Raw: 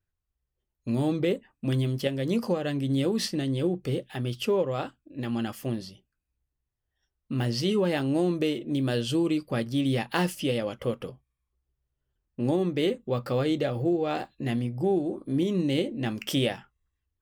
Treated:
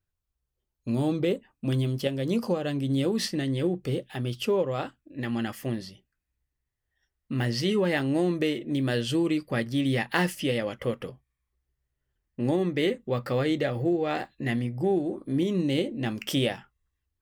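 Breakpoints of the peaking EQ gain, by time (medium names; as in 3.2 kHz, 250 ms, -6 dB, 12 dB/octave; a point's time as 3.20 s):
peaking EQ 1.9 kHz 0.4 oct
2.87 s -2.5 dB
3.60 s +9 dB
3.84 s +0.5 dB
4.56 s +0.5 dB
5.18 s +8.5 dB
15.15 s +8.5 dB
15.62 s +1.5 dB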